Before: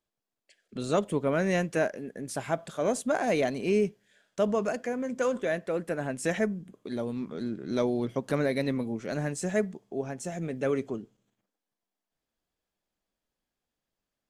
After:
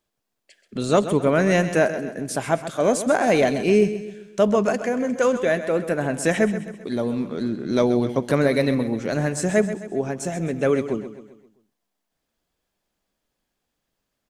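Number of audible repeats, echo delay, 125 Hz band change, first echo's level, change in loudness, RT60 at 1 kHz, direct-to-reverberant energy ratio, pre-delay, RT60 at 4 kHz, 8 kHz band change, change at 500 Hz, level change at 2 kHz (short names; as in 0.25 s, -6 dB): 4, 0.131 s, +8.5 dB, -12.0 dB, +8.5 dB, none, none, none, none, +8.5 dB, +8.5 dB, +8.5 dB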